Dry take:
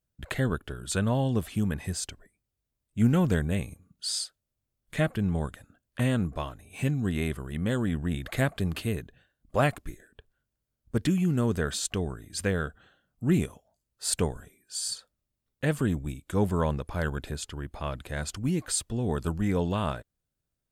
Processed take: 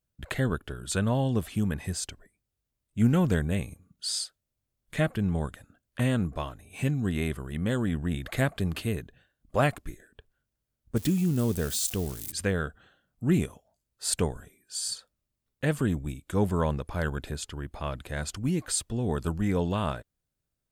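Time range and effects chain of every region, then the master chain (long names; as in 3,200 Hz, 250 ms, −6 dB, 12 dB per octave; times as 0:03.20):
0:10.96–0:12.32: spike at every zero crossing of −27 dBFS + parametric band 1,500 Hz −7 dB 1.9 octaves
whole clip: no processing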